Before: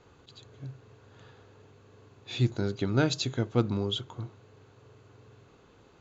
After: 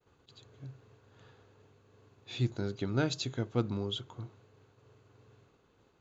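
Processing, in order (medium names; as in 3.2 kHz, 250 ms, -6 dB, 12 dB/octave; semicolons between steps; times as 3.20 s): expander -53 dBFS; trim -5 dB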